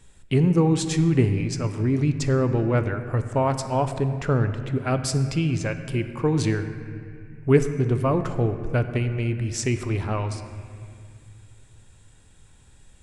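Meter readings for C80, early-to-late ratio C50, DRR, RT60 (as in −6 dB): 10.0 dB, 9.5 dB, 8.0 dB, 2.3 s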